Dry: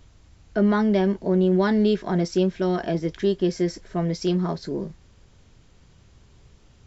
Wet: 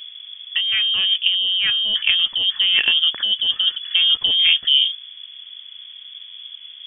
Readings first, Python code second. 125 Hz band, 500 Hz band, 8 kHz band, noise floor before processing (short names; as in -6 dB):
under -25 dB, under -25 dB, n/a, -55 dBFS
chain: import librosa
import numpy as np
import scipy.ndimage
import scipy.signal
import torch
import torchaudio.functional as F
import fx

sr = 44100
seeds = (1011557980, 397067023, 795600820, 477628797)

y = fx.wiener(x, sr, points=15)
y = fx.freq_invert(y, sr, carrier_hz=3400)
y = fx.over_compress(y, sr, threshold_db=-26.0, ratio=-1.0)
y = F.gain(torch.from_numpy(y), 8.5).numpy()